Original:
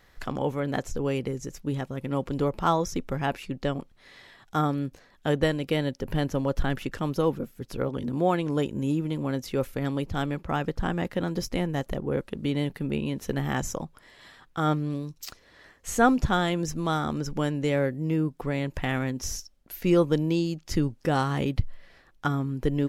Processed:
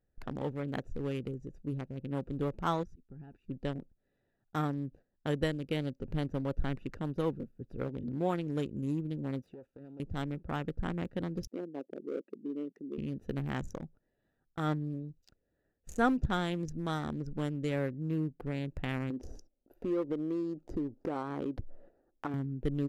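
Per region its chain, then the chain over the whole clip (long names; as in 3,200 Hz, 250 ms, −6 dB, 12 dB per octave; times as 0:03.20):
0:02.83–0:03.49: parametric band 580 Hz −14 dB 0.45 octaves + volume swells 475 ms + downward compressor 12 to 1, threshold −36 dBFS
0:09.42–0:10.00: phase distortion by the signal itself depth 0.3 ms + high-pass filter 360 Hz 6 dB per octave + downward compressor, threshold −37 dBFS
0:11.47–0:12.98: spectral envelope exaggerated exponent 2 + high-pass filter 280 Hz 24 dB per octave
0:19.10–0:22.34: flat-topped bell 570 Hz +14 dB 2.7 octaves + downward compressor 2.5 to 1, threshold −30 dBFS
whole clip: adaptive Wiener filter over 41 samples; noise gate −47 dBFS, range −11 dB; dynamic equaliser 740 Hz, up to −3 dB, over −41 dBFS, Q 1.1; level −6 dB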